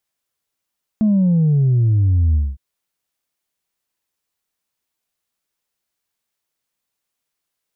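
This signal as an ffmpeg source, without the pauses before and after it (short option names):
-f lavfi -i "aevalsrc='0.251*clip((1.56-t)/0.22,0,1)*tanh(1.12*sin(2*PI*220*1.56/log(65/220)*(exp(log(65/220)*t/1.56)-1)))/tanh(1.12)':d=1.56:s=44100"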